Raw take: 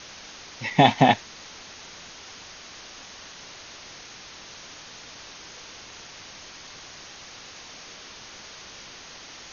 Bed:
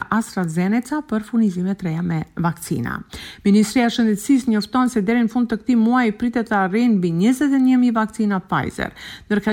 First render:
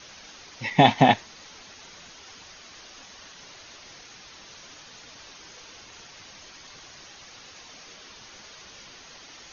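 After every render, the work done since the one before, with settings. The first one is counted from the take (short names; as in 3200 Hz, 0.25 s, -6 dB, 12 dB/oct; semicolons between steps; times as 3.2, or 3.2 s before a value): denoiser 6 dB, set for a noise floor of -44 dBFS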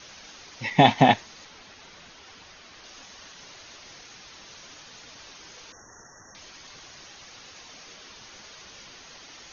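1.45–2.84 air absorption 80 m; 5.72–6.35 brick-wall FIR band-stop 2000–5400 Hz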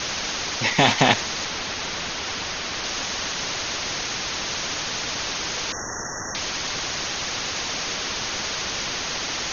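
maximiser +5.5 dB; spectral compressor 2:1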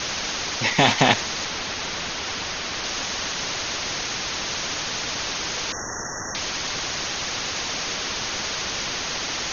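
nothing audible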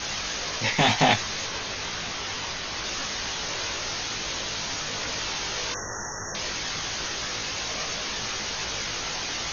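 chorus voices 4, 0.24 Hz, delay 19 ms, depth 1.3 ms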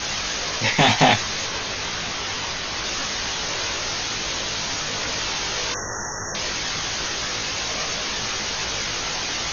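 gain +4.5 dB; limiter -3 dBFS, peak gain reduction 2 dB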